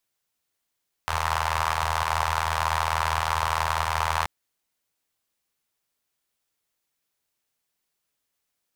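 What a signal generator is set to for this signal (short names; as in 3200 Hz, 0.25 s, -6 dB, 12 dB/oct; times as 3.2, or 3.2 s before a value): four-cylinder engine model, steady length 3.18 s, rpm 2400, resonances 81/960 Hz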